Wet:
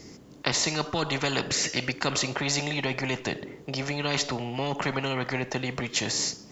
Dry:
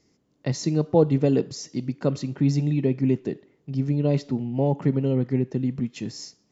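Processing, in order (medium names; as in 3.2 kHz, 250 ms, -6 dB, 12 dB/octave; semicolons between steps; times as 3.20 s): 1.50–1.92 s: high-order bell 2 kHz +9 dB 1.2 oct; spectrum-flattening compressor 4:1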